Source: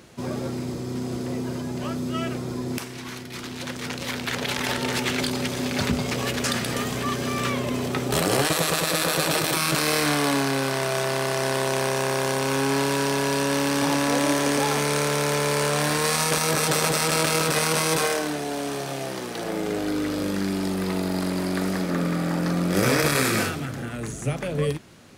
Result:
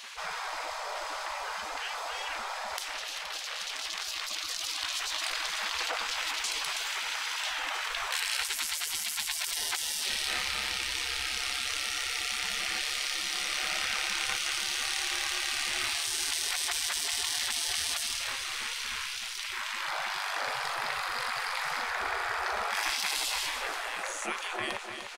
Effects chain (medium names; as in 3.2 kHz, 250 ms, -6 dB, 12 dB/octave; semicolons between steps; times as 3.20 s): RIAA curve playback; spectral gate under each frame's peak -30 dB weak; 6.90–7.51 s: bass shelf 440 Hz -10 dB; feedback delay 300 ms, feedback 49%, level -14.5 dB; level flattener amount 50%; trim +3.5 dB